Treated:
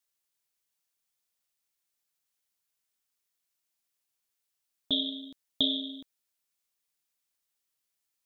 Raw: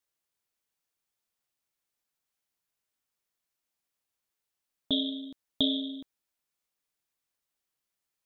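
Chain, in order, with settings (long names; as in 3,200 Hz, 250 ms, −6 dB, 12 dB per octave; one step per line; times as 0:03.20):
high-shelf EQ 2,300 Hz +8 dB
level −4 dB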